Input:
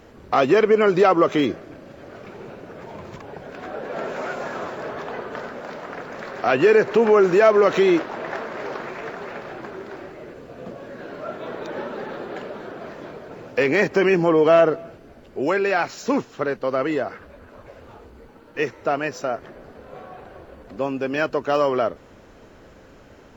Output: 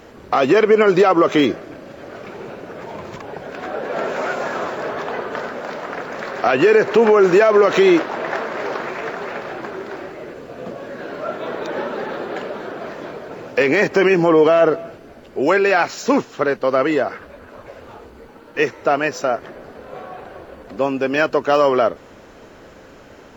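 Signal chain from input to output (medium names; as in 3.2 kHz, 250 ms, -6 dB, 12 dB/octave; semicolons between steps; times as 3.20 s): bass shelf 170 Hz -7 dB; peak limiter -11 dBFS, peak gain reduction 7 dB; trim +6.5 dB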